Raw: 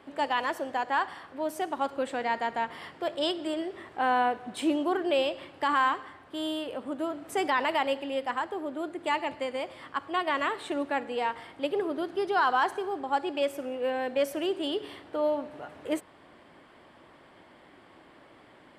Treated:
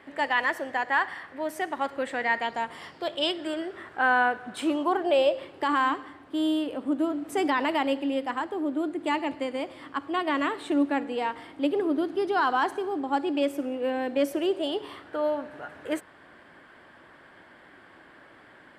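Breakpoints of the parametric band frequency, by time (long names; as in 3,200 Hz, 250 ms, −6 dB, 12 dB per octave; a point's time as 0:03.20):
parametric band +10.5 dB 0.47 octaves
0:02.38 1,900 Hz
0:02.65 10,000 Hz
0:03.49 1,500 Hz
0:04.55 1,500 Hz
0:05.82 290 Hz
0:14.24 290 Hz
0:15.09 1,600 Hz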